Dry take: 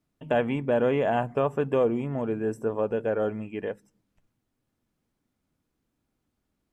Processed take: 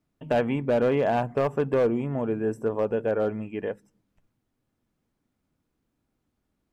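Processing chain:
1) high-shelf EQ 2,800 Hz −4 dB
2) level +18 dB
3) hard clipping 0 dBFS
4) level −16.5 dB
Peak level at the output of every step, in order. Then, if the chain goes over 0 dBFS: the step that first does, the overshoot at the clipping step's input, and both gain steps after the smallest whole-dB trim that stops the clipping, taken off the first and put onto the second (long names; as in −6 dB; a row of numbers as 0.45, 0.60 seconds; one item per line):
−13.0, +5.0, 0.0, −16.5 dBFS
step 2, 5.0 dB
step 2 +13 dB, step 4 −11.5 dB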